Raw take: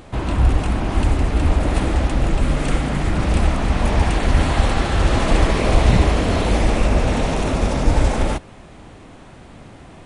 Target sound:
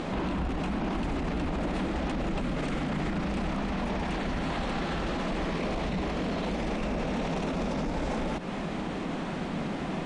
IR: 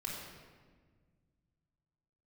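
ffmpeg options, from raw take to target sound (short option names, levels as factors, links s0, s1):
-af "lowpass=5600,lowshelf=f=140:t=q:w=3:g=-7,acompressor=threshold=0.0501:ratio=6,alimiter=level_in=2.37:limit=0.0631:level=0:latency=1:release=50,volume=0.422,volume=2.66"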